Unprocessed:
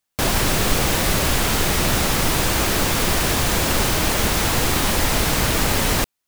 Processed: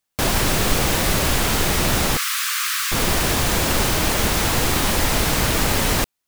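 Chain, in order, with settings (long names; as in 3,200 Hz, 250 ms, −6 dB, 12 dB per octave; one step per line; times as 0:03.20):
0:02.17–0:02.92: Butterworth high-pass 1,100 Hz 96 dB per octave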